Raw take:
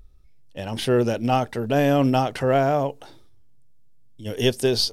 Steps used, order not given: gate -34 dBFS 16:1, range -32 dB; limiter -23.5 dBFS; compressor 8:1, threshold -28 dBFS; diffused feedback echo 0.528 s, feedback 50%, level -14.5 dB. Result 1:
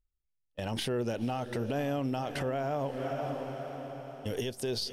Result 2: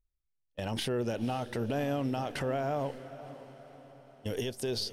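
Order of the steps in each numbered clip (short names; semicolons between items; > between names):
gate > diffused feedback echo > compressor > limiter; gate > compressor > limiter > diffused feedback echo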